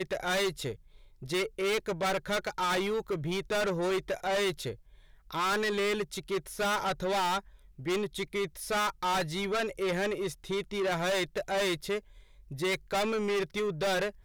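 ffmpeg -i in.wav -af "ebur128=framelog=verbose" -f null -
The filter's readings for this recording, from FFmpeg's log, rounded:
Integrated loudness:
  I:         -31.2 LUFS
  Threshold: -41.6 LUFS
Loudness range:
  LRA:         1.1 LU
  Threshold: -51.5 LUFS
  LRA low:   -32.0 LUFS
  LRA high:  -31.0 LUFS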